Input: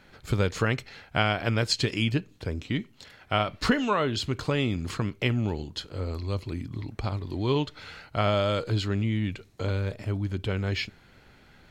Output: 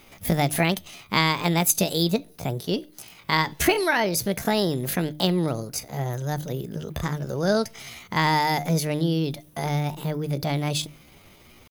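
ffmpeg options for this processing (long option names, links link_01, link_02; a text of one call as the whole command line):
ffmpeg -i in.wav -af "aexciter=amount=4.7:drive=7.1:freq=6700,asetrate=66075,aresample=44100,atempo=0.66742,bandreject=frequency=151.5:width_type=h:width=4,bandreject=frequency=303:width_type=h:width=4,volume=3.5dB" out.wav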